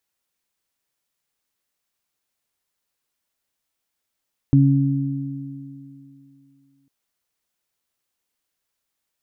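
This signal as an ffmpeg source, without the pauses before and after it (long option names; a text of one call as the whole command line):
ffmpeg -f lavfi -i "aevalsrc='0.282*pow(10,-3*t/2.51)*sin(2*PI*138*t)+0.2*pow(10,-3*t/2.97)*sin(2*PI*276*t)':duration=2.35:sample_rate=44100" out.wav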